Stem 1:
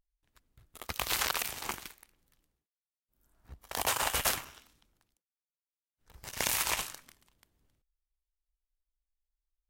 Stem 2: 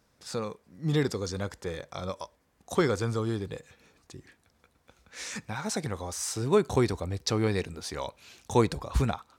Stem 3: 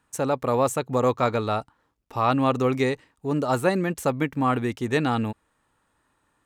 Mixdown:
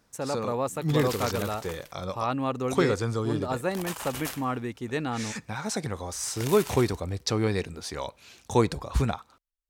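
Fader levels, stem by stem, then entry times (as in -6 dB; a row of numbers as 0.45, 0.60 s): -7.0, +1.0, -7.0 dB; 0.00, 0.00, 0.00 s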